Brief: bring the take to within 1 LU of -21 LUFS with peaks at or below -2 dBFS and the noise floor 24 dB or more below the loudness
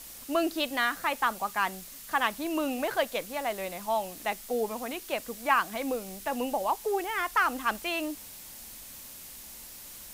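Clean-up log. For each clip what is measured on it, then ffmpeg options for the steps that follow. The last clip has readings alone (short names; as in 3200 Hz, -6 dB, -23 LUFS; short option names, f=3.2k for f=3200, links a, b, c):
noise floor -46 dBFS; noise floor target -54 dBFS; loudness -30.0 LUFS; peak -11.0 dBFS; loudness target -21.0 LUFS
-> -af "afftdn=nr=8:nf=-46"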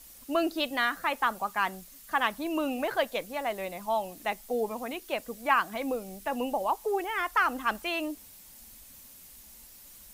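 noise floor -52 dBFS; noise floor target -55 dBFS
-> -af "afftdn=nr=6:nf=-52"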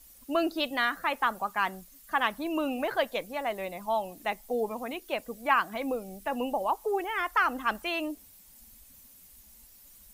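noise floor -55 dBFS; loudness -30.5 LUFS; peak -10.5 dBFS; loudness target -21.0 LUFS
-> -af "volume=9.5dB,alimiter=limit=-2dB:level=0:latency=1"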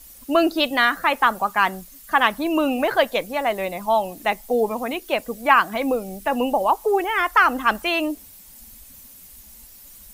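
loudness -21.0 LUFS; peak -2.0 dBFS; noise floor -46 dBFS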